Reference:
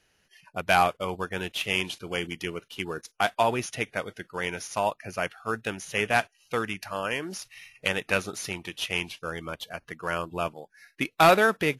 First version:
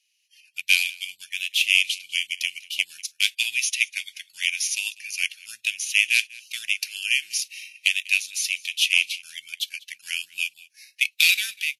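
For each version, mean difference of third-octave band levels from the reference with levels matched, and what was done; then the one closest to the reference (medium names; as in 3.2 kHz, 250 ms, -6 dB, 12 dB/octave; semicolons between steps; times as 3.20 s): 18.5 dB: elliptic high-pass 2.4 kHz, stop band 50 dB; level rider gain up to 14 dB; delay 195 ms -22.5 dB; resampled via 32 kHz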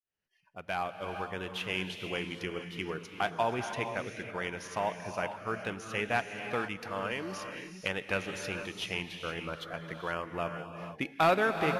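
7.0 dB: fade-in on the opening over 1.85 s; treble shelf 5.7 kHz -11.5 dB; in parallel at 0 dB: compression, threshold -33 dBFS, peak gain reduction 17.5 dB; on the sum: gated-style reverb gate 500 ms rising, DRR 6 dB; trim -8 dB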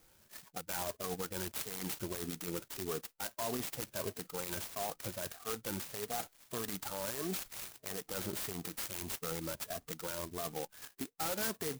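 12.5 dB: drifting ripple filter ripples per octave 1.4, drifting +1.6 Hz, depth 16 dB; reverse; compression 16:1, threshold -29 dBFS, peak gain reduction 20 dB; reverse; peak limiter -28 dBFS, peak gain reduction 11 dB; sampling jitter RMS 0.14 ms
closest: second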